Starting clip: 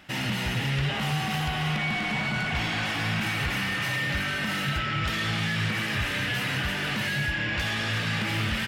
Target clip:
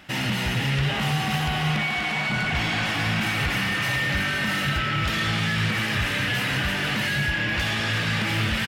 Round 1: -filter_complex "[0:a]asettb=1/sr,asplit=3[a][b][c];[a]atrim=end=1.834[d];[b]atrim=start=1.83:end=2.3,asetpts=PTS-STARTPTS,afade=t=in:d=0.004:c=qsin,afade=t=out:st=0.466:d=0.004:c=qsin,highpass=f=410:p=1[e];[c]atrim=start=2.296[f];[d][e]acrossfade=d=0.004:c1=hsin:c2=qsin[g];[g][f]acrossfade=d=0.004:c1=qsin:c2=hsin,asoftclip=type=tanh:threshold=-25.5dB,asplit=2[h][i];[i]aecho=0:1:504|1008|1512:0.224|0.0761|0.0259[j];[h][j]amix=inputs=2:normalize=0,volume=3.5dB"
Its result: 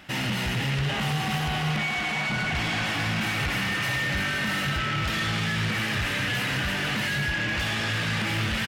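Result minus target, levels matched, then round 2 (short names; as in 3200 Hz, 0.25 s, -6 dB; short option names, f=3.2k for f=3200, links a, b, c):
soft clip: distortion +17 dB
-filter_complex "[0:a]asettb=1/sr,asplit=3[a][b][c];[a]atrim=end=1.834[d];[b]atrim=start=1.83:end=2.3,asetpts=PTS-STARTPTS,afade=t=in:d=0.004:c=qsin,afade=t=out:st=0.466:d=0.004:c=qsin,highpass=f=410:p=1[e];[c]atrim=start=2.296[f];[d][e]acrossfade=d=0.004:c1=hsin:c2=qsin[g];[g][f]acrossfade=d=0.004:c1=qsin:c2=hsin,asoftclip=type=tanh:threshold=-14.5dB,asplit=2[h][i];[i]aecho=0:1:504|1008|1512:0.224|0.0761|0.0259[j];[h][j]amix=inputs=2:normalize=0,volume=3.5dB"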